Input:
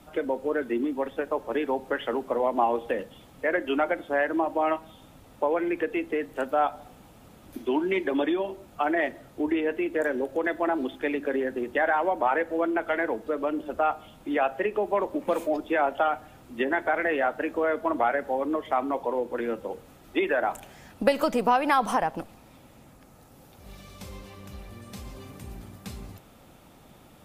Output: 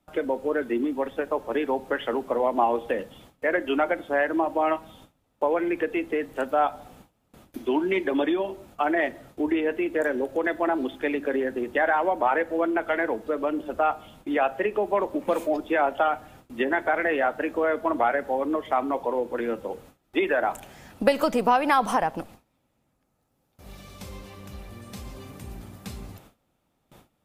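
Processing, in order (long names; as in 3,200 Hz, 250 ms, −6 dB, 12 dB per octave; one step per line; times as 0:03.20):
noise gate with hold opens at −40 dBFS
level +1.5 dB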